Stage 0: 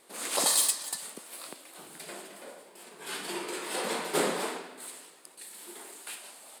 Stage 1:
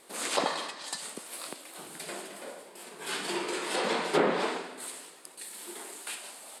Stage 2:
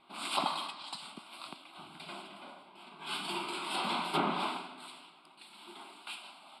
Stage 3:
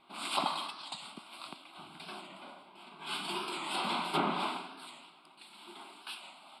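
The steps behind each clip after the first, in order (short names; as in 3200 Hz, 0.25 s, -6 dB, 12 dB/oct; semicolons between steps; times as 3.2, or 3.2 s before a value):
treble ducked by the level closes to 2100 Hz, closed at -23 dBFS; gain +3.5 dB
fixed phaser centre 1800 Hz, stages 6; low-pass opened by the level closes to 2900 Hz, open at -32 dBFS
record warp 45 rpm, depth 100 cents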